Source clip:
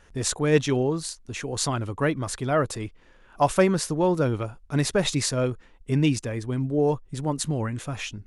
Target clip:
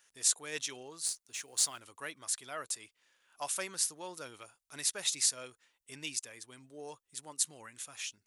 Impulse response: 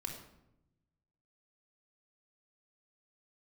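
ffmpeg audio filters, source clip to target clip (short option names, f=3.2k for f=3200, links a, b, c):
-filter_complex "[0:a]aderivative,asplit=3[a][b][c];[a]afade=t=out:st=1.04:d=0.02[d];[b]acrusher=bits=4:mode=log:mix=0:aa=0.000001,afade=t=in:st=1.04:d=0.02,afade=t=out:st=1.79:d=0.02[e];[c]afade=t=in:st=1.79:d=0.02[f];[d][e][f]amix=inputs=3:normalize=0"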